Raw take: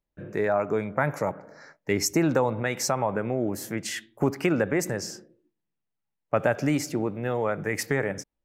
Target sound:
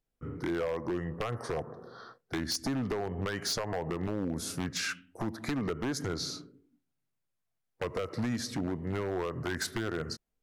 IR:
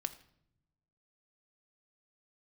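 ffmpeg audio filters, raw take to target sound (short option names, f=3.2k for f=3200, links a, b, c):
-af "acompressor=threshold=-27dB:ratio=10,asetrate=35721,aresample=44100,aeval=exprs='0.0562*(abs(mod(val(0)/0.0562+3,4)-2)-1)':c=same"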